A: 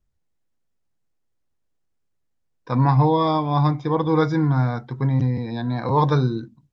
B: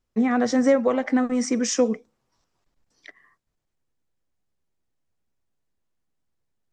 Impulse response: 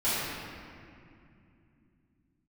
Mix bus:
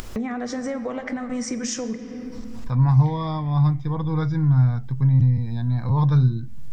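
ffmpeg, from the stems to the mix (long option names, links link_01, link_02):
-filter_complex "[0:a]volume=-8.5dB,asplit=2[link_01][link_02];[1:a]acompressor=mode=upward:threshold=-30dB:ratio=2.5,alimiter=limit=-19.5dB:level=0:latency=1:release=304,volume=-1.5dB,asplit=2[link_03][link_04];[link_04]volume=-21.5dB[link_05];[link_02]apad=whole_len=296784[link_06];[link_03][link_06]sidechaincompress=threshold=-39dB:ratio=8:attack=5.9:release=353[link_07];[2:a]atrim=start_sample=2205[link_08];[link_05][link_08]afir=irnorm=-1:irlink=0[link_09];[link_01][link_07][link_09]amix=inputs=3:normalize=0,asubboost=boost=11.5:cutoff=120,acompressor=mode=upward:threshold=-22dB:ratio=2.5"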